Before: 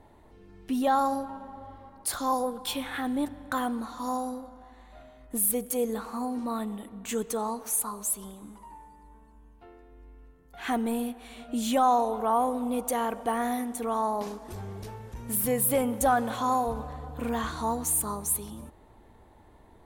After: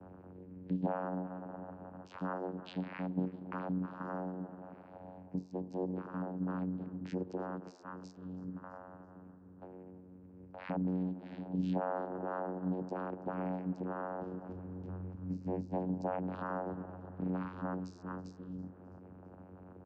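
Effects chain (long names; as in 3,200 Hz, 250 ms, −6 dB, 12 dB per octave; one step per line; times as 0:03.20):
spectral envelope exaggerated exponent 1.5
downward compressor 2 to 1, threshold −45 dBFS, peak gain reduction 14 dB
mains-hum notches 50/100/150/200/250/300/350/400/450 Hz
upward compression, threshold −45 dBFS
channel vocoder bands 8, saw 92 Hz
high-frequency loss of the air 140 metres
on a send: echo with shifted repeats 330 ms, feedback 50%, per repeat +79 Hz, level −22.5 dB
on the sum: level +3.5 dB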